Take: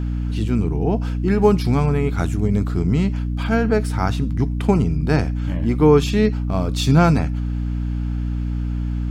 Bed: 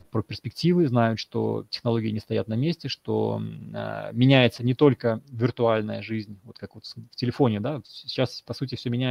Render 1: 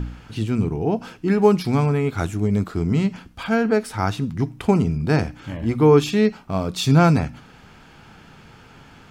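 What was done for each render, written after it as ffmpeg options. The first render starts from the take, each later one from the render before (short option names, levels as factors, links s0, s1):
-af "bandreject=f=60:t=h:w=4,bandreject=f=120:t=h:w=4,bandreject=f=180:t=h:w=4,bandreject=f=240:t=h:w=4,bandreject=f=300:t=h:w=4"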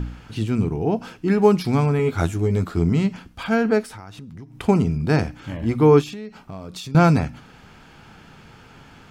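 -filter_complex "[0:a]asettb=1/sr,asplit=3[s0][s1][s2];[s0]atrim=end=1.984[s3];[s1]atrim=start=1.98:end=2.9,asetpts=PTS-STARTPTS,afade=t=in:d=0.004:c=qsin,afade=t=out:st=0.916:d=0.004:c=qsin,asplit=2[s4][s5];[s5]adelay=12,volume=0.531[s6];[s4][s6]amix=inputs=2:normalize=0,atrim=end_sample=40572[s7];[s2]atrim=start=2.896[s8];[s3][s7]acrossfade=d=0.004:c1=hsin:c2=qsin[s9];[s9][s8]acrossfade=d=0.004:c1=qsin:c2=hsin,asettb=1/sr,asplit=3[s10][s11][s12];[s10]atrim=end=3.814[s13];[s11]atrim=start=3.81:end=4.6,asetpts=PTS-STARTPTS,afade=t=in:d=0.004:c=qsin,afade=t=out:st=0.786:d=0.004:c=qsin,acompressor=threshold=0.0178:ratio=10:attack=3.2:release=140:knee=1:detection=peak[s14];[s12]atrim=start=4.596[s15];[s13][s14]acrossfade=d=0.004:c1=hsin:c2=qsin[s16];[s16][s15]acrossfade=d=0.004:c1=qsin:c2=hsin,asettb=1/sr,asplit=3[s17][s18][s19];[s17]atrim=end=6.014[s20];[s18]atrim=start=6.01:end=6.95,asetpts=PTS-STARTPTS,afade=t=in:d=0.004:c=qsin,afade=t=out:st=0.936:d=0.004:c=qsin,acompressor=threshold=0.0282:ratio=8:attack=3.2:release=140:knee=1:detection=peak[s21];[s19]atrim=start=6.946[s22];[s20][s21]acrossfade=d=0.004:c1=hsin:c2=qsin[s23];[s23][s22]acrossfade=d=0.004:c1=qsin:c2=hsin"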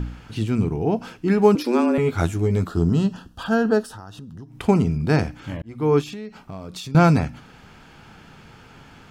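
-filter_complex "[0:a]asettb=1/sr,asplit=3[s0][s1][s2];[s0]atrim=end=1.554[s3];[s1]atrim=start=1.55:end=1.98,asetpts=PTS-STARTPTS,afade=t=in:d=0.004:c=qsin,afade=t=out:st=0.426:d=0.004:c=qsin,afreqshift=120[s4];[s2]atrim=start=1.976[s5];[s3][s4]acrossfade=d=0.004:c1=hsin:c2=qsin[s6];[s6][s5]acrossfade=d=0.004:c1=qsin:c2=hsin,asettb=1/sr,asplit=3[s7][s8][s9];[s7]atrim=end=2.674[s10];[s8]atrim=start=2.67:end=4.49,asetpts=PTS-STARTPTS,afade=t=in:d=0.004:c=qsin,afade=t=out:st=1.816:d=0.004:c=qsin,asuperstop=centerf=2200:order=4:qfactor=2.5[s11];[s9]atrim=start=4.486[s12];[s10][s11]acrossfade=d=0.004:c1=hsin:c2=qsin[s13];[s13][s12]acrossfade=d=0.004:c1=qsin:c2=hsin,asplit=2[s14][s15];[s14]atrim=end=5.62,asetpts=PTS-STARTPTS,afade=t=out:st=5.616:d=0.004:c=hsin[s16];[s15]atrim=start=5.62,asetpts=PTS-STARTPTS,afade=t=in:d=0.53[s17];[s16][s17]concat=n=2:v=0:a=1"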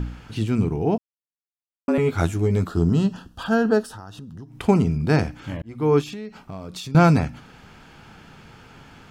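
-filter_complex "[0:a]asplit=3[s0][s1][s2];[s0]atrim=end=0.98,asetpts=PTS-STARTPTS,afade=t=out:st=0.976:d=0.004:c=hsin[s3];[s1]atrim=start=0.98:end=1.88,asetpts=PTS-STARTPTS,volume=0[s4];[s2]atrim=start=1.88,asetpts=PTS-STARTPTS,afade=t=in:d=0.004:c=hsin[s5];[s3][s4][s5]concat=n=3:v=0:a=1"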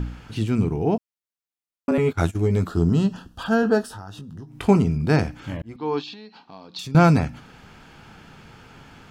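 -filter_complex "[0:a]asettb=1/sr,asplit=3[s0][s1][s2];[s0]atrim=end=1.914[s3];[s1]atrim=start=1.91:end=2.5,asetpts=PTS-STARTPTS,afade=t=in:d=0.004:c=qsin,afade=t=out:st=0.586:d=0.004:c=qsin,agate=range=0.1:threshold=0.0447:ratio=16:release=100:detection=peak[s4];[s2]atrim=start=2.496[s5];[s3][s4]acrossfade=d=0.004:c1=hsin:c2=qsin[s6];[s6][s5]acrossfade=d=0.004:c1=qsin:c2=hsin,asettb=1/sr,asplit=3[s7][s8][s9];[s7]atrim=end=3.614[s10];[s8]atrim=start=3.61:end=4.77,asetpts=PTS-STARTPTS,afade=t=in:d=0.004:c=qsin,afade=t=out:st=1.156:d=0.004:c=qsin,asplit=2[s11][s12];[s12]adelay=20,volume=0.376[s13];[s11][s13]amix=inputs=2:normalize=0,atrim=end_sample=51156[s14];[s9]atrim=start=4.766[s15];[s10][s14]acrossfade=d=0.004:c1=hsin:c2=qsin[s16];[s16][s15]acrossfade=d=0.004:c1=qsin:c2=hsin,asettb=1/sr,asplit=3[s17][s18][s19];[s17]atrim=end=5.764[s20];[s18]atrim=start=5.76:end=6.79,asetpts=PTS-STARTPTS,afade=t=in:d=0.004:c=qsin,afade=t=out:st=1.026:d=0.004:c=qsin,highpass=340,equalizer=f=400:t=q:w=4:g=-8,equalizer=f=600:t=q:w=4:g=-9,equalizer=f=870:t=q:w=4:g=3,equalizer=f=1300:t=q:w=4:g=-8,equalizer=f=2100:t=q:w=4:g=-8,equalizer=f=4200:t=q:w=4:g=9,lowpass=f=4700:w=0.5412,lowpass=f=4700:w=1.3066[s21];[s19]atrim=start=6.786[s22];[s20][s21]acrossfade=d=0.004:c1=hsin:c2=qsin[s23];[s23][s22]acrossfade=d=0.004:c1=qsin:c2=hsin"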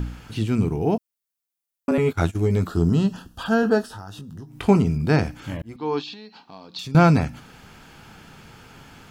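-filter_complex "[0:a]highshelf=f=7600:g=11,acrossover=split=5300[s0][s1];[s1]acompressor=threshold=0.00398:ratio=4:attack=1:release=60[s2];[s0][s2]amix=inputs=2:normalize=0"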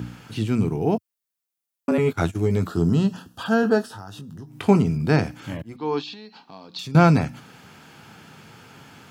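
-af "highpass=f=94:w=0.5412,highpass=f=94:w=1.3066"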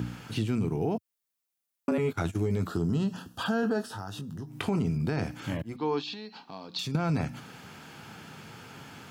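-af "alimiter=limit=0.188:level=0:latency=1:release=21,acompressor=threshold=0.0447:ratio=2.5"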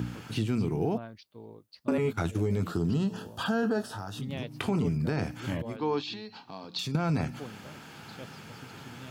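-filter_complex "[1:a]volume=0.0841[s0];[0:a][s0]amix=inputs=2:normalize=0"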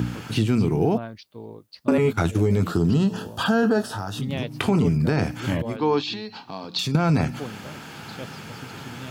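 -af "volume=2.51"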